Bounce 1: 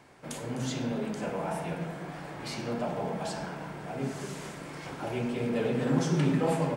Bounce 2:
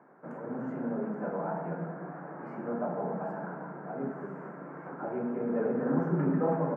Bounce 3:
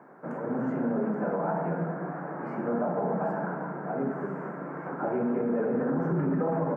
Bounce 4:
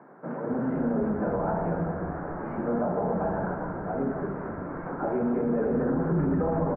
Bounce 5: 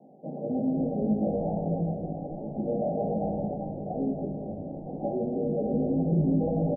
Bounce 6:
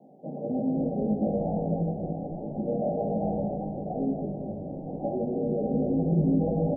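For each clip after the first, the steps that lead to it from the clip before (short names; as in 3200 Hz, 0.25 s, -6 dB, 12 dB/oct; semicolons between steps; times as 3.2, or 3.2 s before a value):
elliptic band-pass 170–1500 Hz, stop band 40 dB
limiter -26.5 dBFS, peak gain reduction 9 dB; gain +6.5 dB
air absorption 350 m; frequency-shifting echo 0.253 s, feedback 58%, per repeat -87 Hz, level -12 dB; gain +2 dB
rippled Chebyshev low-pass 810 Hz, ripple 6 dB; doubler 19 ms -2.5 dB
reverb RT60 2.1 s, pre-delay 48 ms, DRR 8.5 dB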